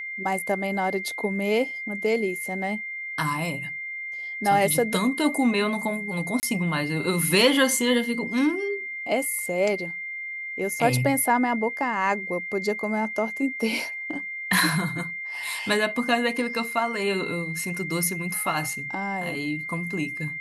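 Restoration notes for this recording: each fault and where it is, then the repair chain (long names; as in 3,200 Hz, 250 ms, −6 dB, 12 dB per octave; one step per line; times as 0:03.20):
whistle 2,100 Hz −31 dBFS
0:06.40–0:06.43: drop-out 29 ms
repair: notch filter 2,100 Hz, Q 30
repair the gap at 0:06.40, 29 ms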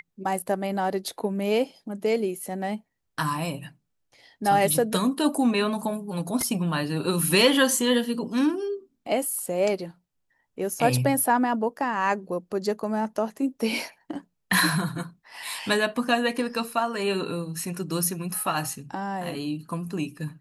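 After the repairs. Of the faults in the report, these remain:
none of them is left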